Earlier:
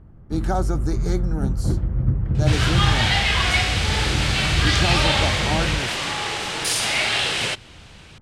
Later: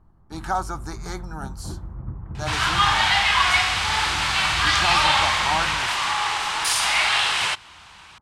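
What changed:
first sound: add band-pass 270 Hz, Q 0.64; master: add graphic EQ 125/250/500/1000 Hz -9/-9/-11/+11 dB

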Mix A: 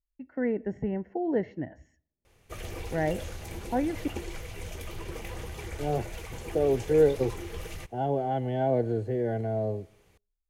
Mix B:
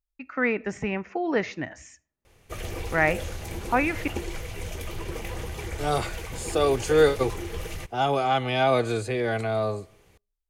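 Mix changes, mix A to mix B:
speech: remove running mean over 36 samples; background +4.5 dB

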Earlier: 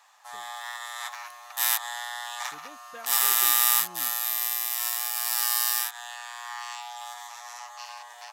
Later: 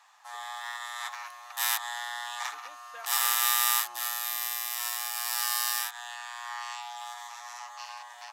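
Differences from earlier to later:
background: add high shelf 10000 Hz -7 dB; master: add Chebyshev high-pass 820 Hz, order 2

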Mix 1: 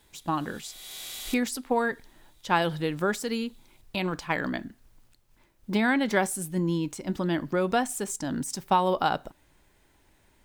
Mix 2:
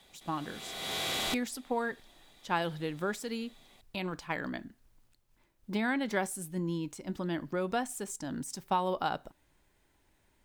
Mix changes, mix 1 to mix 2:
speech -7.0 dB; background: remove pre-emphasis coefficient 0.9

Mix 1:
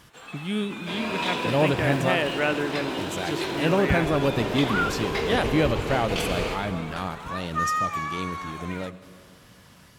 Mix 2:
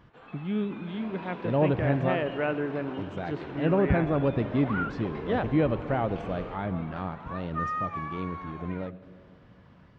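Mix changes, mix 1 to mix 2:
first sound: send off; second sound -10.0 dB; master: add tape spacing loss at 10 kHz 43 dB

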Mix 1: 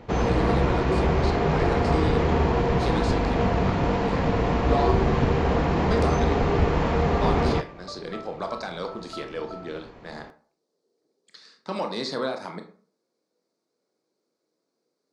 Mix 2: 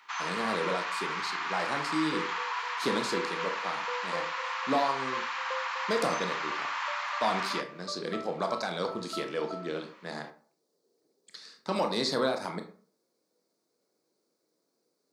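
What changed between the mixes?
speech: remove air absorption 55 m; first sound: add steep high-pass 990 Hz 48 dB/oct

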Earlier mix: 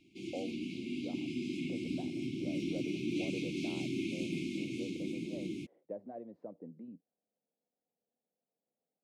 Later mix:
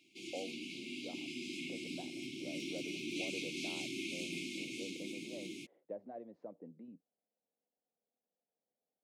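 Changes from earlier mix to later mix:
background: add low shelf 240 Hz -10 dB; master: add tilt +2 dB/oct

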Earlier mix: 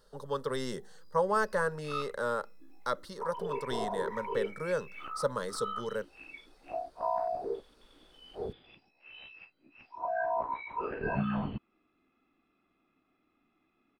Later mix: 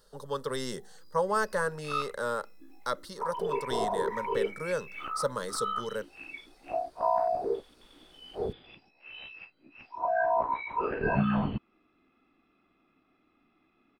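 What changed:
speech: add high shelf 3900 Hz +6.5 dB; background +5.0 dB

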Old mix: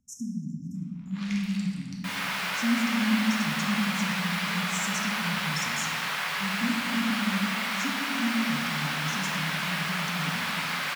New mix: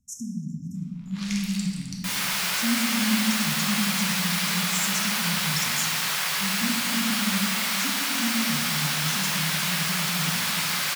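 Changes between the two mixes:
speech -7.0 dB; master: add tone controls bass +12 dB, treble +14 dB

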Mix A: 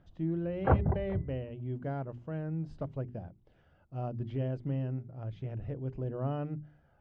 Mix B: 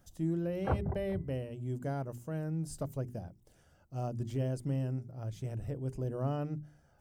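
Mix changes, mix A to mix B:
background -6.5 dB; master: remove LPF 3300 Hz 24 dB/oct

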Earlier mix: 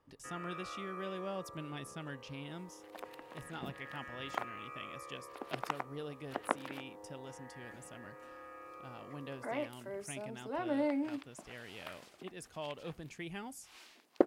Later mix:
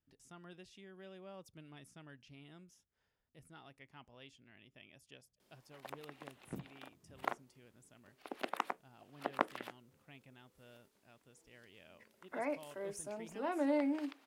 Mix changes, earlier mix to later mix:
speech -11.0 dB; first sound: muted; second sound: entry +2.90 s

